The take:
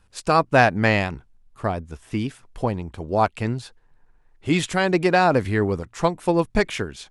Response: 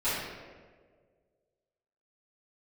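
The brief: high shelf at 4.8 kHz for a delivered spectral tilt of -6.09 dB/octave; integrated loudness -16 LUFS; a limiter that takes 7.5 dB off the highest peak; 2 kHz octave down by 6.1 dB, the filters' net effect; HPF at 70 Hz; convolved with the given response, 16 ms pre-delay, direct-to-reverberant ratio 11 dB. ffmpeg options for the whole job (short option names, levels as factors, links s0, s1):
-filter_complex "[0:a]highpass=70,equalizer=f=2000:t=o:g=-7,highshelf=f=4800:g=-7,alimiter=limit=0.211:level=0:latency=1,asplit=2[s0][s1];[1:a]atrim=start_sample=2205,adelay=16[s2];[s1][s2]afir=irnorm=-1:irlink=0,volume=0.0841[s3];[s0][s3]amix=inputs=2:normalize=0,volume=3.16"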